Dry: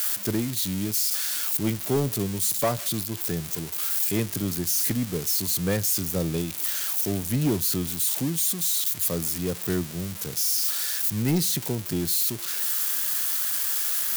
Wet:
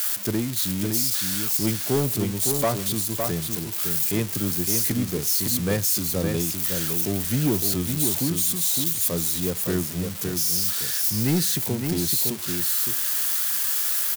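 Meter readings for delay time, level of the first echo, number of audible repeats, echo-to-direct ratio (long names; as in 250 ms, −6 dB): 561 ms, −5.5 dB, 1, −5.5 dB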